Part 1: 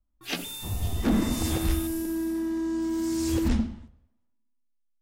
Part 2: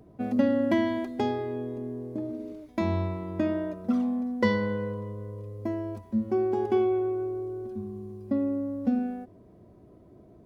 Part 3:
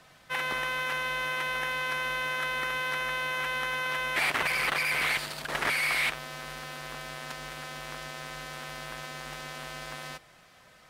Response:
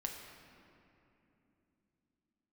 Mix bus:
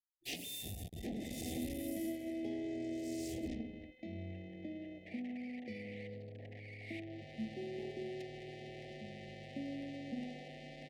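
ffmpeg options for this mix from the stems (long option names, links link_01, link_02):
-filter_complex "[0:a]agate=range=-33dB:threshold=-45dB:ratio=3:detection=peak,acompressor=threshold=-37dB:ratio=4,aeval=exprs='clip(val(0),-1,0.00473)':channel_layout=same,volume=-1dB,asplit=2[link_01][link_02];[link_02]volume=-22dB[link_03];[1:a]alimiter=limit=-19dB:level=0:latency=1:release=447,acrossover=split=380|3000[link_04][link_05][link_06];[link_05]acompressor=threshold=-41dB:ratio=6[link_07];[link_04][link_07][link_06]amix=inputs=3:normalize=0,adelay=1250,volume=-15.5dB,asplit=2[link_08][link_09];[link_09]volume=-6dB[link_10];[2:a]highshelf=frequency=3500:gain=-10,acompressor=threshold=-34dB:ratio=3,asoftclip=type=tanh:threshold=-23.5dB,adelay=900,volume=-9.5dB,afade=type=in:start_time=6.79:duration=0.6:silence=0.298538,asplit=2[link_11][link_12];[link_12]volume=-4dB[link_13];[3:a]atrim=start_sample=2205[link_14];[link_03][link_10][link_13]amix=inputs=3:normalize=0[link_15];[link_15][link_14]afir=irnorm=-1:irlink=0[link_16];[link_01][link_08][link_11][link_16]amix=inputs=4:normalize=0,highpass=frequency=100:poles=1,anlmdn=0.00398,asuperstop=centerf=1200:order=12:qfactor=1.1"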